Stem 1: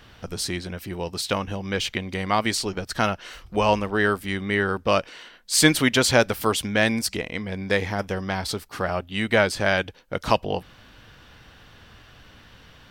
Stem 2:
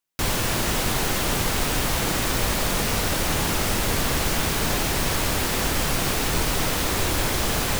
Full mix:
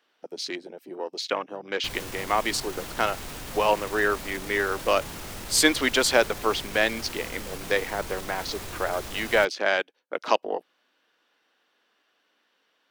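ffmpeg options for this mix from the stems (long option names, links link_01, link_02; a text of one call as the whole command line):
ffmpeg -i stem1.wav -i stem2.wav -filter_complex "[0:a]highpass=frequency=300:width=0.5412,highpass=frequency=300:width=1.3066,afwtdn=0.02,volume=-1.5dB[link_01];[1:a]alimiter=limit=-16.5dB:level=0:latency=1:release=13,adelay=1650,volume=-12dB[link_02];[link_01][link_02]amix=inputs=2:normalize=0" out.wav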